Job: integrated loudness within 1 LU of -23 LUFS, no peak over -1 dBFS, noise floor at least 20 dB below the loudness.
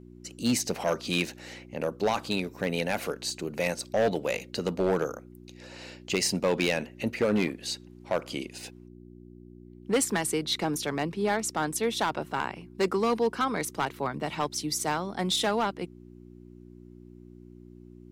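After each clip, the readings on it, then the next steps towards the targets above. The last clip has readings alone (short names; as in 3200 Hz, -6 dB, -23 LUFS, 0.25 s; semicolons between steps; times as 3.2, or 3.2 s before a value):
clipped 0.9%; flat tops at -19.0 dBFS; hum 60 Hz; harmonics up to 360 Hz; hum level -47 dBFS; loudness -29.0 LUFS; peak -19.0 dBFS; loudness target -23.0 LUFS
-> clip repair -19 dBFS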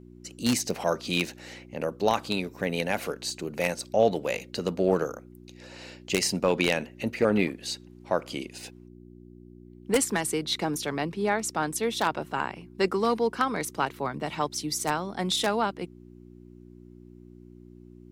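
clipped 0.0%; hum 60 Hz; harmonics up to 360 Hz; hum level -46 dBFS
-> de-hum 60 Hz, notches 6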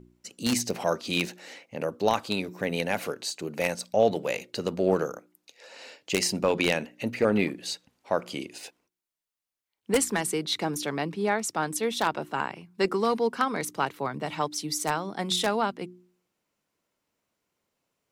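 hum none; loudness -28.0 LUFS; peak -9.5 dBFS; loudness target -23.0 LUFS
-> gain +5 dB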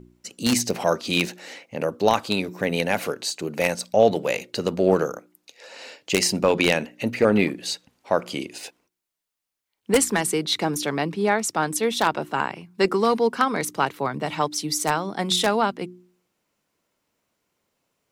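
loudness -23.0 LUFS; peak -4.5 dBFS; noise floor -81 dBFS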